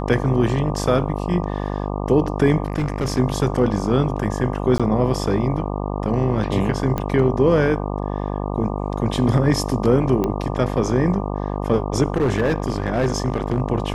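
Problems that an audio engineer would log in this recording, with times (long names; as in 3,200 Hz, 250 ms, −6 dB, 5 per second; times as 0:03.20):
mains buzz 50 Hz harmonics 24 −25 dBFS
0:02.66–0:03.19: clipping −17 dBFS
0:04.78–0:04.80: drop-out 16 ms
0:06.98: click −11 dBFS
0:10.24: click −10 dBFS
0:12.08–0:13.60: clipping −14 dBFS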